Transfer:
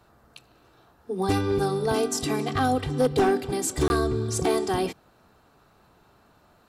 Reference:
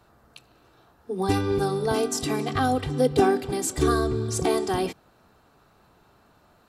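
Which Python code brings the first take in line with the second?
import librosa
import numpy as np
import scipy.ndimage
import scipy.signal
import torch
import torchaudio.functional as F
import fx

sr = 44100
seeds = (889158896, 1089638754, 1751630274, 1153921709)

y = fx.fix_declip(x, sr, threshold_db=-15.5)
y = fx.fix_interpolate(y, sr, at_s=(3.88,), length_ms=21.0)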